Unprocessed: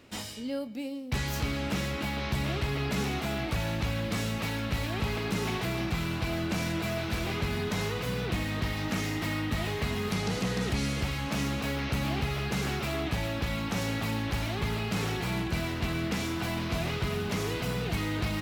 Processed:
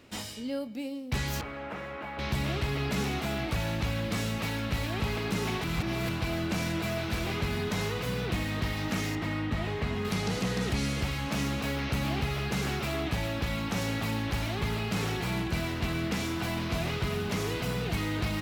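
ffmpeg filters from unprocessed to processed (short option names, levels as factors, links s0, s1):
-filter_complex "[0:a]asettb=1/sr,asplit=3[s0][s1][s2];[s0]atrim=end=1.414[s3];[s1]atrim=start=1.41:end=2.19,asetpts=PTS-STARTPTS,afade=t=in:d=0.004:c=qsin,afade=t=out:st=0.776:d=0.004:c=qsin,acrossover=split=420 2100:gain=0.2 1 0.0794[s4][s5][s6];[s4][s5][s6]amix=inputs=3:normalize=0[s7];[s2]atrim=start=2.186[s8];[s3][s7]acrossfade=d=0.004:c1=hsin:c2=qsin[s9];[s9][s8]acrossfade=d=0.004:c1=qsin:c2=hsin,asettb=1/sr,asplit=3[s10][s11][s12];[s10]atrim=end=9.154[s13];[s11]atrim=start=9.15:end=10.05,asetpts=PTS-STARTPTS,afade=t=in:d=0.004:c=qsin,afade=t=out:st=0.896:d=0.004:c=qsin,lowpass=f=2500:p=1[s14];[s12]atrim=start=10.046[s15];[s13][s14]acrossfade=d=0.004:c1=hsin:c2=qsin[s16];[s16][s15]acrossfade=d=0.004:c1=qsin:c2=hsin,asplit=3[s17][s18][s19];[s17]atrim=end=5.642[s20];[s18]atrim=start=5.638:end=6.092,asetpts=PTS-STARTPTS,areverse[s21];[s19]atrim=start=6.088[s22];[s20][s21]acrossfade=d=0.004:c1=hsin:c2=hsin[s23];[s23][s22]acrossfade=d=0.004:c1=hsin:c2=hsin"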